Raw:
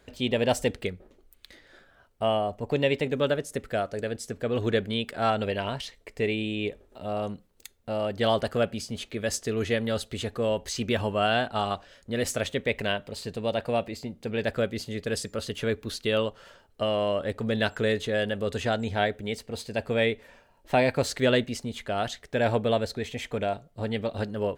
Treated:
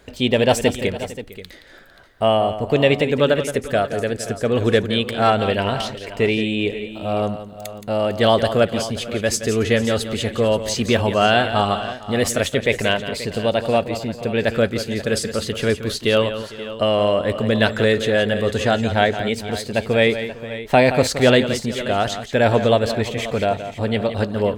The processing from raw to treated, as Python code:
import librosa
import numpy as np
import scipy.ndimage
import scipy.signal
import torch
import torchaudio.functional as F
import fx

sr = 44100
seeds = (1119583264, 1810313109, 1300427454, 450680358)

y = fx.echo_multitap(x, sr, ms=(172, 453, 531), db=(-11.0, -19.0, -14.5))
y = F.gain(torch.from_numpy(y), 8.5).numpy()